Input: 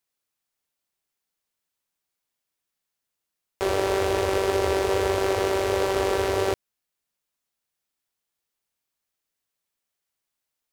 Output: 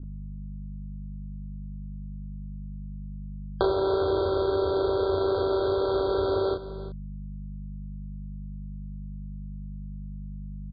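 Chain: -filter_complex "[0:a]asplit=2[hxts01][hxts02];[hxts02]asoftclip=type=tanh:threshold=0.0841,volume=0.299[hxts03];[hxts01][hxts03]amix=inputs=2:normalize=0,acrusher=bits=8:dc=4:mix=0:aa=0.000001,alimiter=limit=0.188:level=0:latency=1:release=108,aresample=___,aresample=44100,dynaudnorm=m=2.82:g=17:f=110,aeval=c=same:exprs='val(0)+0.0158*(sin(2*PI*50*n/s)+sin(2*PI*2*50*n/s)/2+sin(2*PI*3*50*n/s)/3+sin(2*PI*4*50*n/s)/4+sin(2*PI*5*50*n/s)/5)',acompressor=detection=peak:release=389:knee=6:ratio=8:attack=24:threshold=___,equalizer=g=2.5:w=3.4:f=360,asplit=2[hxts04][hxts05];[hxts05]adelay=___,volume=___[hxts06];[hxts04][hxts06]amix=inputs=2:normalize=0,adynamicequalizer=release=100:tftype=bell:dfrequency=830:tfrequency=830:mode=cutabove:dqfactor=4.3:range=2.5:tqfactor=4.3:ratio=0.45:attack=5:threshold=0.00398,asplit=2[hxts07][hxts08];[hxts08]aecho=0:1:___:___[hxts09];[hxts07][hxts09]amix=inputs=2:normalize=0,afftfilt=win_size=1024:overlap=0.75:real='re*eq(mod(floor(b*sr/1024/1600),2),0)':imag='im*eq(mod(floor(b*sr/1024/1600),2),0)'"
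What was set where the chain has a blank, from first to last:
11025, 0.0562, 34, 0.631, 345, 0.178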